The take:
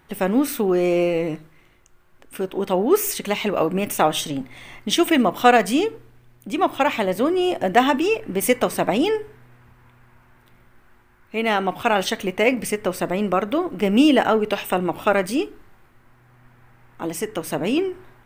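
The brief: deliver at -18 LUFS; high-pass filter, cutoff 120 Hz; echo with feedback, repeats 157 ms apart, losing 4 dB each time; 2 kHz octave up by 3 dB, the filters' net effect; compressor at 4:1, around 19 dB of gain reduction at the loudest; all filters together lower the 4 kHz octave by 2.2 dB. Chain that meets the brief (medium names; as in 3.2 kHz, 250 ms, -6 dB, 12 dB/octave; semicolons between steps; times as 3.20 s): high-pass 120 Hz; peaking EQ 2 kHz +5.5 dB; peaking EQ 4 kHz -6.5 dB; compression 4:1, threshold -32 dBFS; feedback delay 157 ms, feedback 63%, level -4 dB; trim +14 dB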